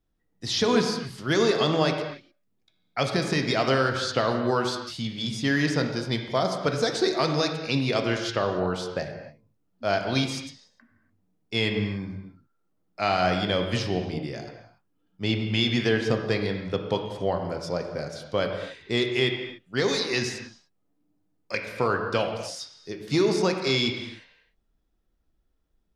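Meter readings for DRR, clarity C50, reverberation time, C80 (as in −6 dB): 3.5 dB, 5.5 dB, non-exponential decay, 6.5 dB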